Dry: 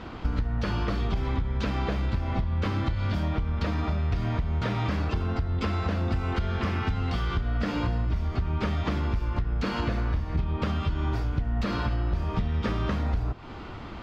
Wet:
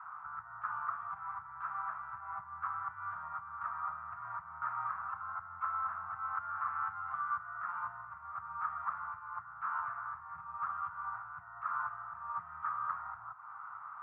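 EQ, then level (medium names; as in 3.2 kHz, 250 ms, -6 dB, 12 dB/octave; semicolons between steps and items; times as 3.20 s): Chebyshev band-pass 180–1300 Hz, order 4; inverse Chebyshev band-stop 220–470 Hz, stop band 70 dB; +7.0 dB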